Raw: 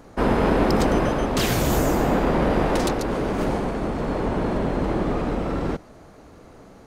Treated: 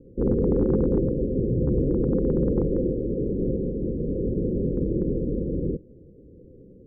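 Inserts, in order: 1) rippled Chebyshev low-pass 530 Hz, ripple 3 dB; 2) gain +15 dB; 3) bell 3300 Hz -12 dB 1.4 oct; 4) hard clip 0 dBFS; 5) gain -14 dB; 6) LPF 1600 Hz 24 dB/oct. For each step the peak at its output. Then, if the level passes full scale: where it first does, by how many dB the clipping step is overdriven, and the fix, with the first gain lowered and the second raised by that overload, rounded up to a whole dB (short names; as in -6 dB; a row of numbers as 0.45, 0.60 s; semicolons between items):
-11.0, +4.0, +4.0, 0.0, -14.0, -13.5 dBFS; step 2, 4.0 dB; step 2 +11 dB, step 5 -10 dB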